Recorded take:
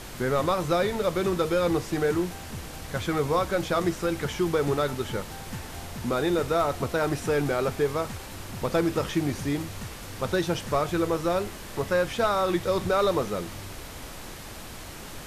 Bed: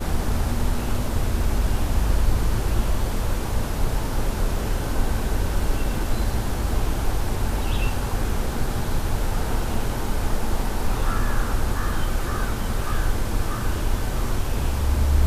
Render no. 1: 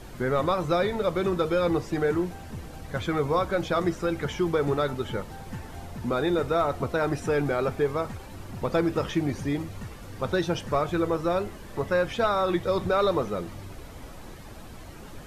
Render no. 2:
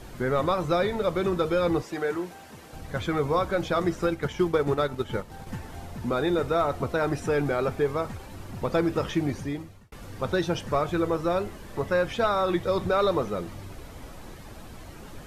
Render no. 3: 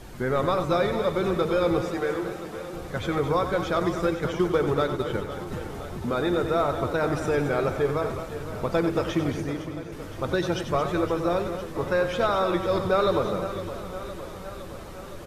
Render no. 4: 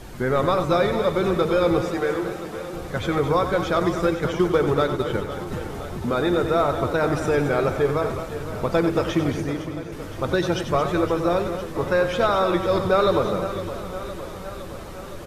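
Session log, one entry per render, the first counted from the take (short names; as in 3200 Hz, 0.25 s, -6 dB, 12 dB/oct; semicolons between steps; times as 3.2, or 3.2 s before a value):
denoiser 10 dB, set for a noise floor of -41 dBFS
1.82–2.73 HPF 470 Hz 6 dB/oct; 3.96–5.58 transient shaper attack +3 dB, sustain -6 dB; 9.29–9.92 fade out
loudspeakers at several distances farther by 32 m -10 dB, 76 m -10 dB; warbling echo 0.512 s, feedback 68%, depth 72 cents, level -13 dB
gain +3.5 dB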